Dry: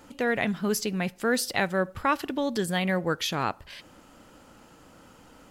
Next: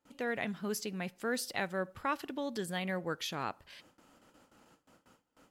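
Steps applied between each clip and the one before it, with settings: gate with hold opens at -42 dBFS; bass shelf 73 Hz -10 dB; trim -9 dB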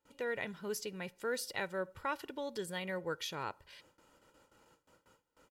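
comb 2.1 ms, depth 49%; trim -3.5 dB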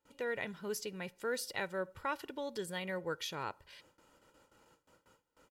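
no audible change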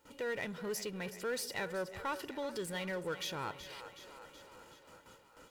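two-band feedback delay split 390 Hz, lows 151 ms, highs 373 ms, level -15.5 dB; power-law waveshaper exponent 0.7; trim -4 dB

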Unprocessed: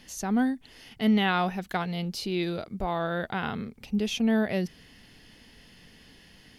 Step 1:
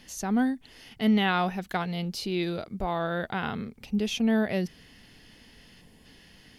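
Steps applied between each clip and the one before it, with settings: time-frequency box 5.81–6.05 s, 1.1–6.8 kHz -7 dB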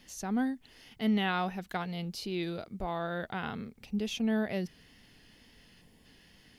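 wow and flutter 27 cents; bit crusher 12-bit; trim -5.5 dB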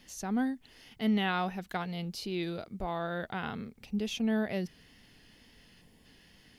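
no audible change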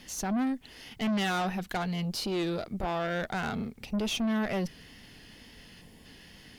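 valve stage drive 35 dB, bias 0.4; trim +9 dB

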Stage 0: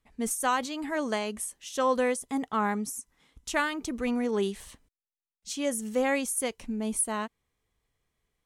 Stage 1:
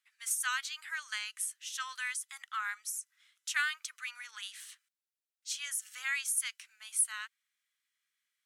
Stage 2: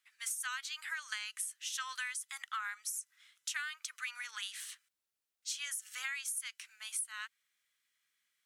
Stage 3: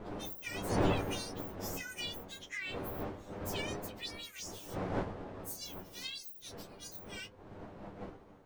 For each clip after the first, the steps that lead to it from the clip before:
elliptic high-pass 1.4 kHz, stop band 80 dB
compression 10:1, threshold -39 dBFS, peak gain reduction 14.5 dB; trim +3.5 dB
frequency axis rescaled in octaves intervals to 126%; wind noise 560 Hz -43 dBFS; flange 0.27 Hz, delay 9.8 ms, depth 1.1 ms, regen +48%; trim +6 dB

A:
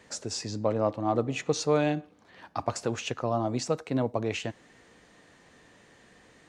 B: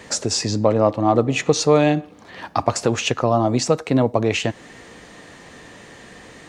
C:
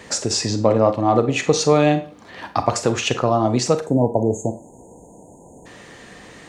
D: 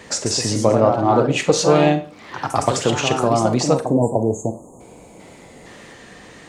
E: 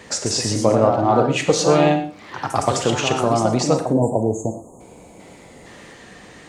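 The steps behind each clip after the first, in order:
band-stop 1.5 kHz, Q 22; in parallel at +2.5 dB: compression, threshold -35 dBFS, peak gain reduction 15 dB; on the sum: trim +7.5 dB
spectral selection erased 3.82–5.66 s, 1–6.3 kHz; Schroeder reverb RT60 0.3 s, combs from 32 ms, DRR 9.5 dB
ever faster or slower copies 156 ms, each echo +2 st, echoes 2, each echo -6 dB
gated-style reverb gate 140 ms rising, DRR 11 dB; trim -1 dB

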